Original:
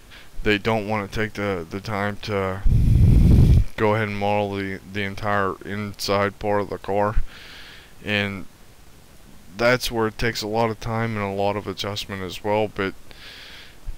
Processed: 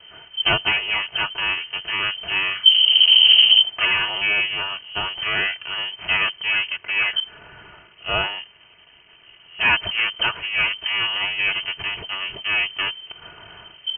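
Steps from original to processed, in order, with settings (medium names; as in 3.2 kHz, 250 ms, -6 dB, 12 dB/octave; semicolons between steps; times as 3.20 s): comb filter that takes the minimum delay 3.7 ms; 6.76–9.61 s: bass shelf 70 Hz -11 dB; frequency inversion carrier 3.1 kHz; trim +1.5 dB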